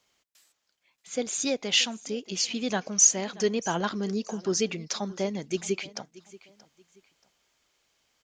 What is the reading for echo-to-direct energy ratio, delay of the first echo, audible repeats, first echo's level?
-19.5 dB, 0.63 s, 2, -20.0 dB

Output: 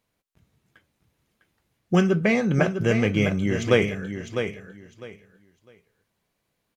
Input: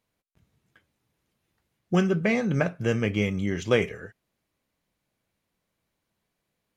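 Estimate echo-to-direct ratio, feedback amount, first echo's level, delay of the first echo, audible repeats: -8.0 dB, 21%, -8.0 dB, 0.653 s, 2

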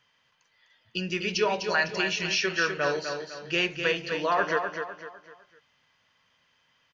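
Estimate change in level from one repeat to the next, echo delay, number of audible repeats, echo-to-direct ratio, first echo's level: -8.5 dB, 0.252 s, 4, -6.0 dB, -6.5 dB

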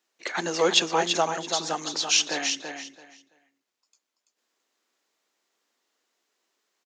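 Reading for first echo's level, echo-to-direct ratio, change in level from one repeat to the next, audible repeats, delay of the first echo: -6.5 dB, -6.5 dB, -14.0 dB, 3, 0.334 s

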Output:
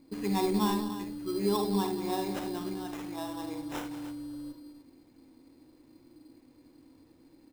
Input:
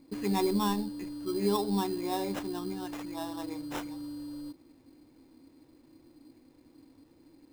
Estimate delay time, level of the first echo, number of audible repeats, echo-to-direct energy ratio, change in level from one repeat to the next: 52 ms, -9.0 dB, 4, -4.5 dB, no steady repeat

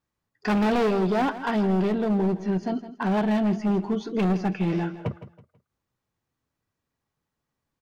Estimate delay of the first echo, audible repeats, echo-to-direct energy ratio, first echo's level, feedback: 0.163 s, 3, -13.5 dB, -14.0 dB, 32%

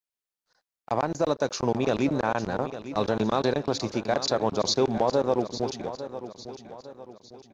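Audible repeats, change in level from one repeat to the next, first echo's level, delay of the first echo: 3, -7.5 dB, -12.5 dB, 0.854 s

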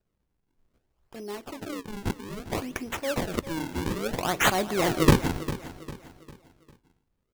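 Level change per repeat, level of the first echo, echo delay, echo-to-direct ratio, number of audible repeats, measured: -8.0 dB, -14.0 dB, 0.401 s, -13.0 dB, 3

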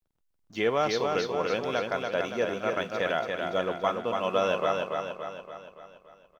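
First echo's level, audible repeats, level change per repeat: -4.0 dB, 6, -5.5 dB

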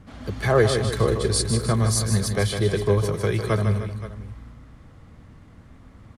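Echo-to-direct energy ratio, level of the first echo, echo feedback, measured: -5.5 dB, -7.5 dB, no steady repeat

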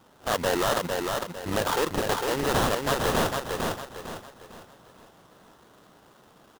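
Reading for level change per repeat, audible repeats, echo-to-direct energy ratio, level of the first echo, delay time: -9.0 dB, 4, -3.5 dB, -4.0 dB, 0.453 s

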